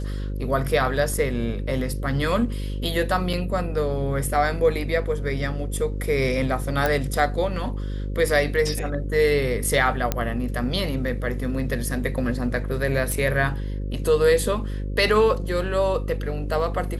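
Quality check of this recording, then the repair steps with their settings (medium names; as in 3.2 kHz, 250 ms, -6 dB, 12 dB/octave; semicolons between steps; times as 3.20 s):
buzz 50 Hz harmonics 11 -28 dBFS
3.33 s: dropout 4.4 ms
6.86 s: pop -8 dBFS
10.12 s: pop -7 dBFS
13.12 s: pop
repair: de-click; de-hum 50 Hz, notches 11; interpolate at 3.33 s, 4.4 ms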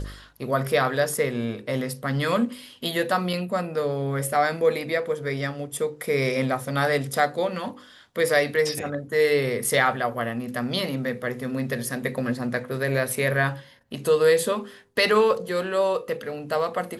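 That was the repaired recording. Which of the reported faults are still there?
nothing left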